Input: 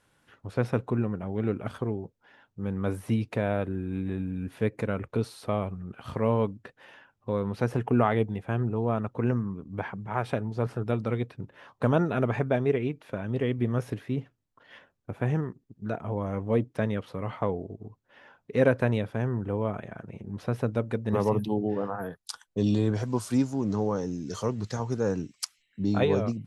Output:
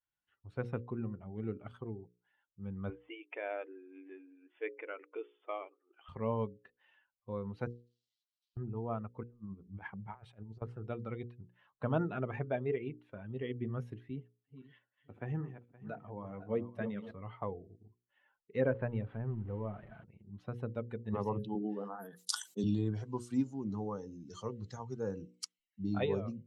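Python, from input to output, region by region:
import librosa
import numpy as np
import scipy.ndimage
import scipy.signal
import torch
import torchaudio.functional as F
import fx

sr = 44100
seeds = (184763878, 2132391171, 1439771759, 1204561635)

y = fx.chain(x, sr, fx.brickwall_bandpass(low_hz=270.0, high_hz=3600.0),
    fx.dynamic_eq(hz=2300.0, q=1.7, threshold_db=-54.0, ratio=4.0, max_db=5), at=(2.9, 6.09))
y = fx.chain(y, sr, fx.delta_mod(bps=64000, step_db=-25.5),
    fx.cheby2_highpass(hz=960.0, order=4, stop_db=80),
    fx.air_absorb(metres=400.0), at=(7.67, 8.57))
y = fx.chain(y, sr, fx.transient(attack_db=-2, sustain_db=-6),
    fx.over_compress(threshold_db=-35.0, ratio=-0.5),
    fx.high_shelf(hz=7600.0, db=2.0), at=(9.23, 10.62))
y = fx.chain(y, sr, fx.reverse_delay_fb(ms=260, feedback_pct=52, wet_db=-7.5),
    fx.highpass(hz=120.0, slope=12), at=(14.1, 17.11))
y = fx.chain(y, sr, fx.zero_step(step_db=-34.5),
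    fx.air_absorb(metres=460.0), at=(18.61, 20.04))
y = fx.chain(y, sr, fx.highpass(hz=190.0, slope=24),
    fx.bass_treble(bass_db=6, treble_db=13),
    fx.sustainer(db_per_s=95.0), at=(21.55, 22.64))
y = fx.bin_expand(y, sr, power=1.5)
y = scipy.signal.sosfilt(scipy.signal.butter(2, 8800.0, 'lowpass', fs=sr, output='sos'), y)
y = fx.hum_notches(y, sr, base_hz=60, count=9)
y = y * librosa.db_to_amplitude(-6.0)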